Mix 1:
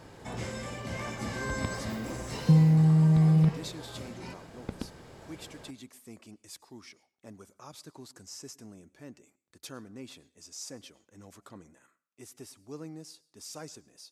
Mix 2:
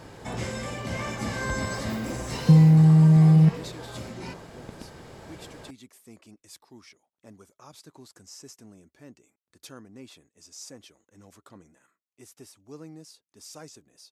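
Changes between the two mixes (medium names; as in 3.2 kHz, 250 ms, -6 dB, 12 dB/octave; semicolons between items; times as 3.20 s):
first sound +7.5 dB; second sound -6.0 dB; reverb: off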